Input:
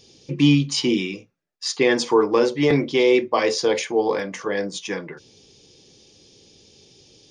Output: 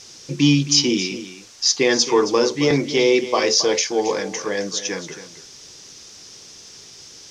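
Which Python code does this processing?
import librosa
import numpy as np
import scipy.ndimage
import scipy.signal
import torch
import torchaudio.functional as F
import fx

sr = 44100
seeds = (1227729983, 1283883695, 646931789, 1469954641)

y = fx.quant_dither(x, sr, seeds[0], bits=8, dither='triangular')
y = fx.lowpass_res(y, sr, hz=5900.0, q=4.3)
y = y + 10.0 ** (-13.0 / 20.0) * np.pad(y, (int(270 * sr / 1000.0), 0))[:len(y)]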